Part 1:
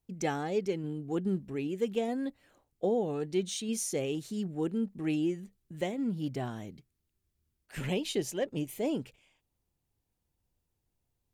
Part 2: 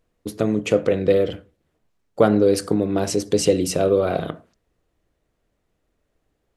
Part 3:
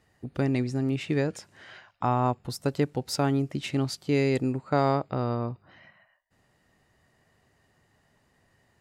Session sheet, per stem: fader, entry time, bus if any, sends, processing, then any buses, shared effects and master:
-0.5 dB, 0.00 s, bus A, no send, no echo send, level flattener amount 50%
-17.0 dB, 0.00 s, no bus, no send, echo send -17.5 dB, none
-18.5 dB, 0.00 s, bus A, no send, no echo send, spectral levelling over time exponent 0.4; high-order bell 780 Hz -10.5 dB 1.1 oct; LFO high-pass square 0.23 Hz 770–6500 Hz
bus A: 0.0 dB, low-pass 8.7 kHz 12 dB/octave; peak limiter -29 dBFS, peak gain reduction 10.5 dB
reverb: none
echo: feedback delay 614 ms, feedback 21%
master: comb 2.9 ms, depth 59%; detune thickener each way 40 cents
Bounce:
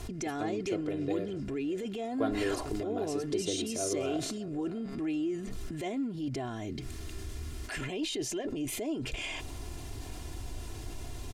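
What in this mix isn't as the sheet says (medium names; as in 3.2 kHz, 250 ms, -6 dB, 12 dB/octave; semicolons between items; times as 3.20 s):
stem 1 -0.5 dB -> +11.5 dB; stem 3: missing LFO high-pass square 0.23 Hz 770–6500 Hz; master: missing detune thickener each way 40 cents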